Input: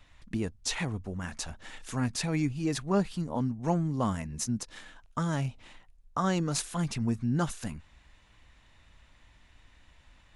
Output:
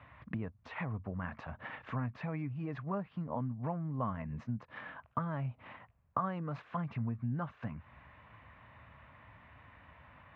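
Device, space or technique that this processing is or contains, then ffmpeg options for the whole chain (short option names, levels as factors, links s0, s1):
bass amplifier: -af "acompressor=threshold=0.00708:ratio=4,highpass=f=76:w=0.5412,highpass=f=76:w=1.3066,equalizer=f=120:t=q:w=4:g=5,equalizer=f=350:t=q:w=4:g=-7,equalizer=f=620:t=q:w=4:g=4,equalizer=f=1100:t=q:w=4:g=7,lowpass=f=2300:w=0.5412,lowpass=f=2300:w=1.3066,volume=1.88"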